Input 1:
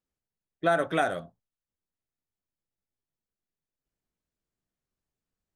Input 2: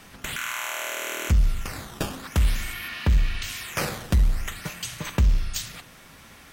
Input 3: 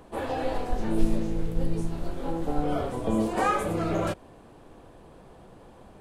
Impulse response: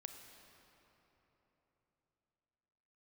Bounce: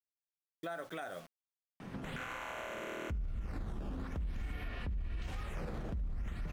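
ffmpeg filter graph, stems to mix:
-filter_complex "[0:a]lowshelf=f=370:g=-6,acrusher=bits=7:mix=0:aa=0.000001,volume=-6.5dB[a];[1:a]lowpass=f=1k:p=1,lowshelf=f=290:g=11.5,adelay=1800,volume=-1dB,asplit=2[b][c];[c]volume=-7.5dB[d];[2:a]acompressor=threshold=-26dB:ratio=6,adelay=1900,volume=-12.5dB[e];[b][e]amix=inputs=2:normalize=0,highpass=f=100:w=0.5412,highpass=f=100:w=1.3066,alimiter=level_in=7.5dB:limit=-24dB:level=0:latency=1:release=37,volume=-7.5dB,volume=0dB[f];[3:a]atrim=start_sample=2205[g];[d][g]afir=irnorm=-1:irlink=0[h];[a][f][h]amix=inputs=3:normalize=0,alimiter=level_in=8dB:limit=-24dB:level=0:latency=1:release=187,volume=-8dB"

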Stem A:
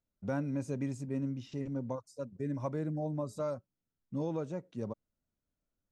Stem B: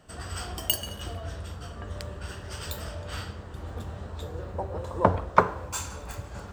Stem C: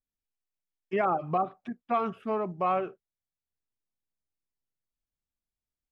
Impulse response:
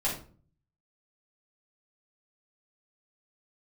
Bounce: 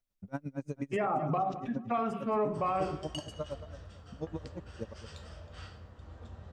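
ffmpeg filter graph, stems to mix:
-filter_complex "[0:a]aeval=exprs='val(0)*pow(10,-35*(0.5-0.5*cos(2*PI*8.5*n/s))/20)':c=same,volume=1.5dB,asplit=2[a][b];[b]volume=-12.5dB[c];[1:a]lowpass=f=7k:w=0.5412,lowpass=f=7k:w=1.3066,adelay=2450,volume=-14.5dB,asplit=2[d][e];[e]volume=-12dB[f];[2:a]volume=-3dB,asplit=3[g][h][i];[h]volume=-8dB[j];[i]volume=-16.5dB[k];[3:a]atrim=start_sample=2205[l];[f][j]amix=inputs=2:normalize=0[m];[m][l]afir=irnorm=-1:irlink=0[n];[c][k]amix=inputs=2:normalize=0,aecho=0:1:221|442|663|884:1|0.24|0.0576|0.0138[o];[a][d][g][n][o]amix=inputs=5:normalize=0,alimiter=limit=-22.5dB:level=0:latency=1:release=69"

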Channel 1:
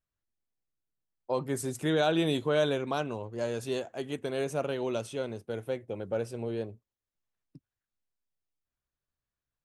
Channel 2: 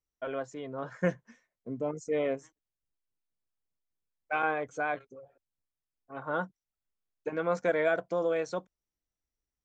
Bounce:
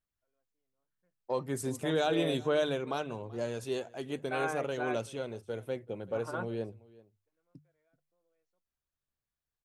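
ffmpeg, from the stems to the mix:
-filter_complex "[0:a]aphaser=in_gain=1:out_gain=1:delay=2.5:decay=0.21:speed=1.2:type=sinusoidal,volume=-3dB,asplit=3[a][b][c];[b]volume=-22dB[d];[1:a]volume=-5.5dB[e];[c]apad=whole_len=425241[f];[e][f]sidechaingate=range=-45dB:threshold=-41dB:ratio=16:detection=peak[g];[d]aecho=0:1:383:1[h];[a][g][h]amix=inputs=3:normalize=0,bandreject=f=50:t=h:w=6,bandreject=f=100:t=h:w=6,bandreject=f=150:t=h:w=6"

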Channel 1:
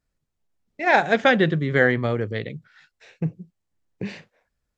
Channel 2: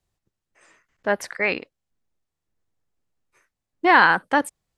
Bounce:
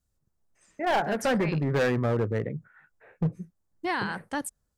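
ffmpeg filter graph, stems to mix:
-filter_complex "[0:a]lowpass=f=1.6k:w=0.5412,lowpass=f=1.6k:w=1.3066,dynaudnorm=f=100:g=3:m=7dB,asoftclip=type=hard:threshold=-14.5dB,volume=-6dB[a];[1:a]bass=f=250:g=13,treble=f=4k:g=14,volume=-13.5dB[b];[a][b]amix=inputs=2:normalize=0,alimiter=limit=-19dB:level=0:latency=1:release=170"

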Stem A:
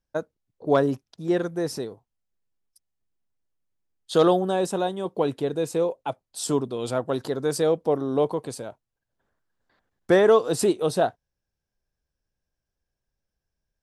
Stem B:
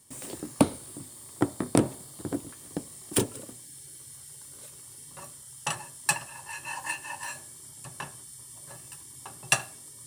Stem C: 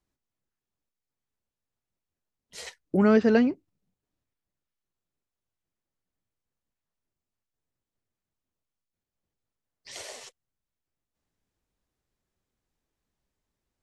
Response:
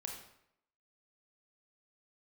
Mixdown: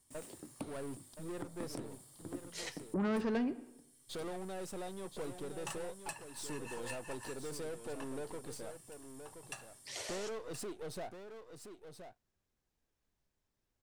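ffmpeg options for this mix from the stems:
-filter_complex "[0:a]aeval=exprs='if(lt(val(0),0),0.251*val(0),val(0))':c=same,acompressor=threshold=-30dB:ratio=2,asoftclip=type=tanh:threshold=-32dB,volume=-6dB,asplit=2[a][b];[b]volume=-9dB[c];[1:a]volume=-13dB,asplit=2[d][e];[e]volume=-20.5dB[f];[2:a]asoftclip=type=tanh:threshold=-20.5dB,volume=-4.5dB,asplit=3[g][h][i];[h]volume=-8dB[j];[i]apad=whole_len=443745[k];[d][k]sidechaincompress=threshold=-42dB:ratio=4:attack=16:release=1270[l];[3:a]atrim=start_sample=2205[m];[j][m]afir=irnorm=-1:irlink=0[n];[c][f]amix=inputs=2:normalize=0,aecho=0:1:1023:1[o];[a][l][g][n][o]amix=inputs=5:normalize=0,alimiter=level_in=5dB:limit=-24dB:level=0:latency=1:release=179,volume=-5dB"

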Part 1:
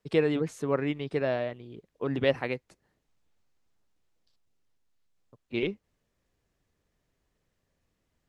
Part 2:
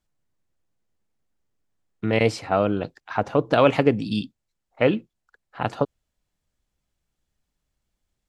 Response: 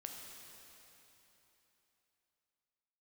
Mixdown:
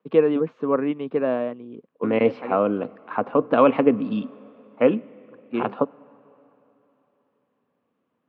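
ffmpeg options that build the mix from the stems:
-filter_complex "[0:a]equalizer=f=2.1k:w=3.9:g=-4.5,volume=2.5dB[a];[1:a]volume=-3.5dB,asplit=3[b][c][d];[c]volume=-15dB[e];[d]apad=whole_len=365411[f];[a][f]sidechaincompress=threshold=-35dB:ratio=8:attack=31:release=273[g];[2:a]atrim=start_sample=2205[h];[e][h]afir=irnorm=-1:irlink=0[i];[g][b][i]amix=inputs=3:normalize=0,highpass=f=140:w=0.5412,highpass=f=140:w=1.3066,equalizer=f=140:t=q:w=4:g=-5,equalizer=f=250:t=q:w=4:g=9,equalizer=f=490:t=q:w=4:g=6,equalizer=f=1.1k:t=q:w=4:g=8,equalizer=f=1.9k:t=q:w=4:g=-4,lowpass=f=2.7k:w=0.5412,lowpass=f=2.7k:w=1.3066"

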